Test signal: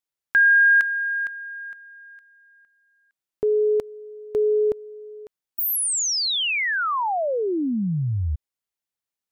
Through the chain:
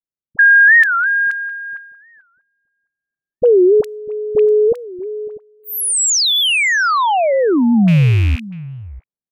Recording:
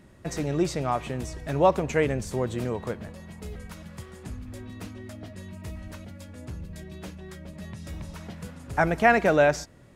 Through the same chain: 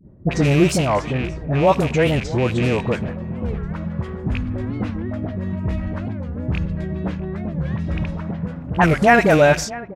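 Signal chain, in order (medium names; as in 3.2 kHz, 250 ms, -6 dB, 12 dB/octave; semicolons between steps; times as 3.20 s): rattle on loud lows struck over -30 dBFS, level -25 dBFS; peaking EQ 160 Hz +4.5 dB 1.1 oct; expander -46 dBFS, range -11 dB; in parallel at -3 dB: peak limiter -18 dBFS; on the sum: gain riding within 5 dB 2 s; on a send: delay 644 ms -18 dB; on the sum: level-controlled noise filter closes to 450 Hz, open at -15.5 dBFS; treble shelf 7.5 kHz +5 dB; phase dispersion highs, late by 46 ms, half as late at 710 Hz; warped record 45 rpm, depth 250 cents; trim +3.5 dB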